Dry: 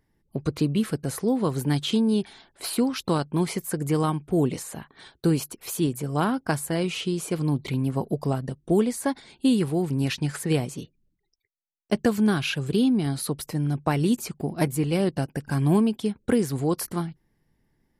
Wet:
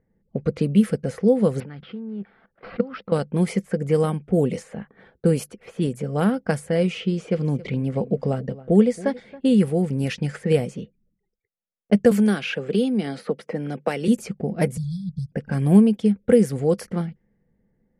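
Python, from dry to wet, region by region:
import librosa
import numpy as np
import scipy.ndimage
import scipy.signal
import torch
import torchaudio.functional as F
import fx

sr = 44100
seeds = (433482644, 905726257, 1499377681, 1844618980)

y = fx.chain(x, sr, fx.level_steps(step_db=19),
    fx.peak_eq(hz=1300.0, db=12.0, octaves=0.64),
    fx.resample_bad(factor=4, down='none', up='filtered'), at=(1.6, 3.12))
y = fx.chain(y, sr, fx.lowpass(hz=7000.0, slope=12),
    fx.echo_single(ms=274, db=-18.5), at=(7.0, 9.6))
y = fx.chain(y, sr, fx.highpass(hz=280.0, slope=12),
    fx.band_squash(depth_pct=70), at=(12.11, 14.08))
y = fx.chain(y, sr, fx.brickwall_bandstop(low_hz=170.0, high_hz=3300.0),
    fx.band_squash(depth_pct=70), at=(14.77, 15.32))
y = fx.high_shelf(y, sr, hz=11000.0, db=-7.5)
y = fx.env_lowpass(y, sr, base_hz=1300.0, full_db=-19.0)
y = fx.graphic_eq_31(y, sr, hz=(200, 315, 500, 1000, 2000, 4000, 10000), db=(11, -5, 12, -9, 4, -7, 6))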